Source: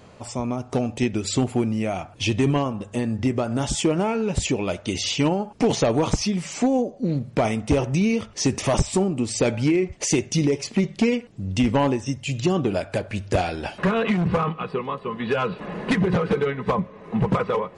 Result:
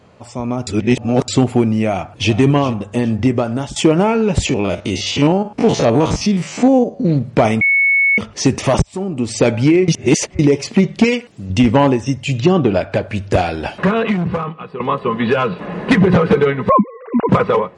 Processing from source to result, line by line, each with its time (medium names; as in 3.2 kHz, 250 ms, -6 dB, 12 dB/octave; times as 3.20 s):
0.67–1.28 s: reverse
1.83–2.35 s: echo throw 410 ms, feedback 35%, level -14 dB
3.11–3.76 s: fade out equal-power, to -15.5 dB
4.49–7.05 s: spectrogram pixelated in time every 50 ms
7.61–8.18 s: bleep 2.21 kHz -17.5 dBFS
8.82–9.32 s: fade in
9.88–10.39 s: reverse
11.04–11.50 s: tilt EQ +2.5 dB/octave
12.39–13.02 s: low-pass 5.3 kHz
13.71–14.80 s: fade out quadratic, to -13 dB
15.30–15.91 s: feedback comb 58 Hz, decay 0.26 s, mix 50%
16.69–17.29 s: formants replaced by sine waves
whole clip: high-pass 48 Hz; treble shelf 5.8 kHz -8 dB; level rider